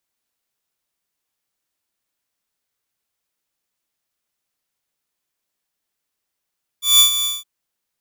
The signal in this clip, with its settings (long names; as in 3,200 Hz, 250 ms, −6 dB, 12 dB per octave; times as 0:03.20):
note with an ADSR envelope saw 3,480 Hz, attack 174 ms, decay 105 ms, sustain −11 dB, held 0.43 s, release 186 ms −4.5 dBFS